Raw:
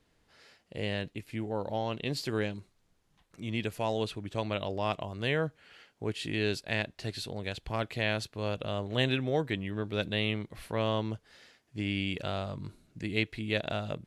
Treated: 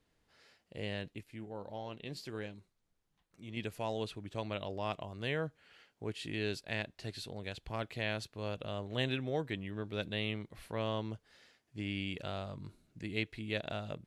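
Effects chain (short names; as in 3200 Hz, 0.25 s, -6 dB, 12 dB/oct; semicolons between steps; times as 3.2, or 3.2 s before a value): 1.23–3.57 flange 1.7 Hz, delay 1.1 ms, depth 5.4 ms, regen +85%; gain -6 dB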